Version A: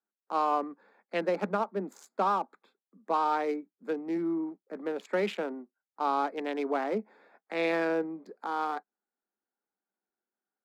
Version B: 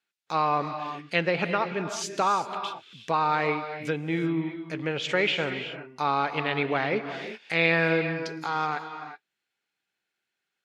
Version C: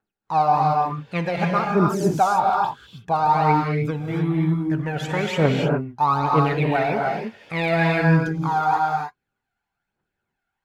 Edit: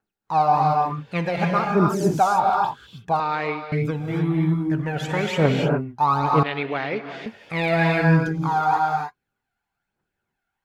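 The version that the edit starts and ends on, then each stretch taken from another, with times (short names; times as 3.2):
C
3.2–3.72 from B
6.43–7.26 from B
not used: A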